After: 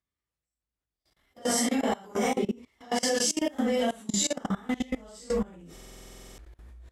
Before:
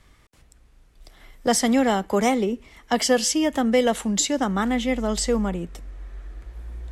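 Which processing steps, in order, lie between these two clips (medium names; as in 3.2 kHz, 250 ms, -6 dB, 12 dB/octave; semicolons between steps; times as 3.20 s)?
phase randomisation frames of 200 ms; high-pass 49 Hz 24 dB/octave; gate -50 dBFS, range -20 dB; treble shelf 3.2 kHz +2.5 dB; level held to a coarse grid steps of 22 dB; buffer glitch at 5.73 s, samples 2048, times 13; trim -3.5 dB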